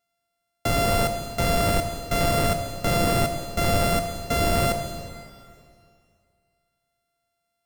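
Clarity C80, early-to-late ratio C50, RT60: 8.0 dB, 7.0 dB, 2.3 s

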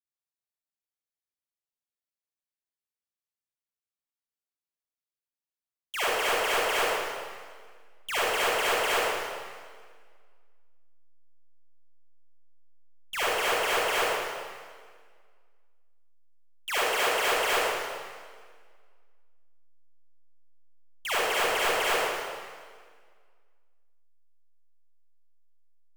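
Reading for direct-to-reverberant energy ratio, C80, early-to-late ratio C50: −10.5 dB, −3.0 dB, −7.0 dB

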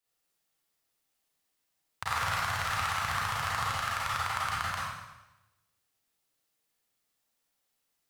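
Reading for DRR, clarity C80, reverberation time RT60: −8.0 dB, 0.5 dB, 1.0 s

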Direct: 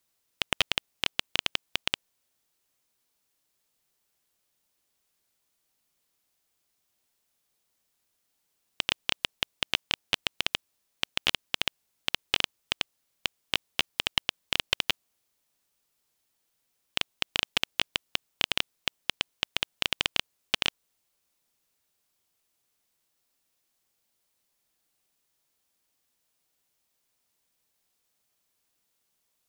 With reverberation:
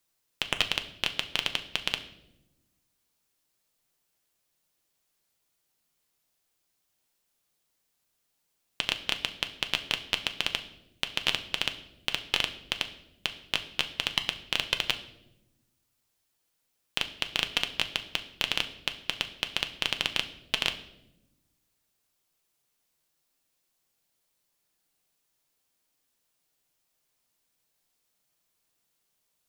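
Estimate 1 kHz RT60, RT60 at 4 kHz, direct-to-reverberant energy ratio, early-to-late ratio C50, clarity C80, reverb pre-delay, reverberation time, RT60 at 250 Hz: 0.70 s, 0.65 s, 7.0 dB, 13.5 dB, 16.0 dB, 6 ms, 0.90 s, 1.6 s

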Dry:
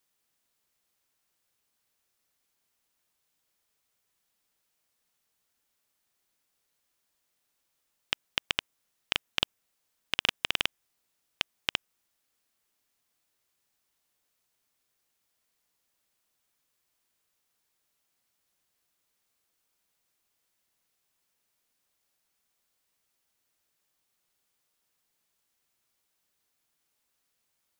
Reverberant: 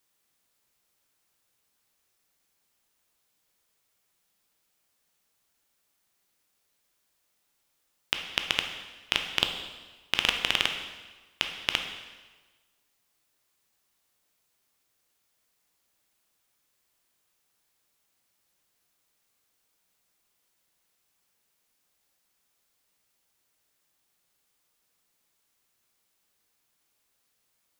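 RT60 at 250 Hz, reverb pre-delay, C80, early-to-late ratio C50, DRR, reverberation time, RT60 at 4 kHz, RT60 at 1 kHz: 1.3 s, 6 ms, 9.0 dB, 6.5 dB, 4.5 dB, 1.3 s, 1.2 s, 1.3 s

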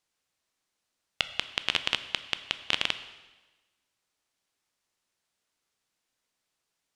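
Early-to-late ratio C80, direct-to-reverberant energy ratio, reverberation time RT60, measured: 14.0 dB, 11.0 dB, 1.2 s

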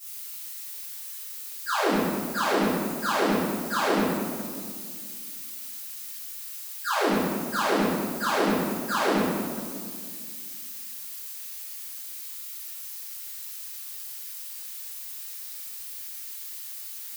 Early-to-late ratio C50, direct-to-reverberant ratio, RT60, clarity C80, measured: −3.0 dB, −18.0 dB, 2.0 s, 0.5 dB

